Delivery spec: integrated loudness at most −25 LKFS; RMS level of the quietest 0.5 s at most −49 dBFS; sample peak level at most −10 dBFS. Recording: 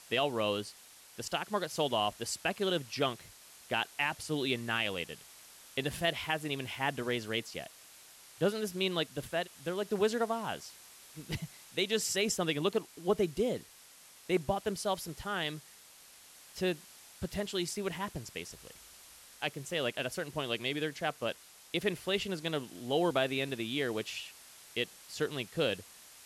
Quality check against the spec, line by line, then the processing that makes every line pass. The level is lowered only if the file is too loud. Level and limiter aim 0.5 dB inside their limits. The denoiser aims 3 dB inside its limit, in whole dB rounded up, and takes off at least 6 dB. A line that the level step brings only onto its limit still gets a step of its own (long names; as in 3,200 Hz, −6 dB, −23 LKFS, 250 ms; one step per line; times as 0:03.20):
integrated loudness −34.5 LKFS: in spec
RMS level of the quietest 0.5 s −57 dBFS: in spec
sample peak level −17.0 dBFS: in spec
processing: no processing needed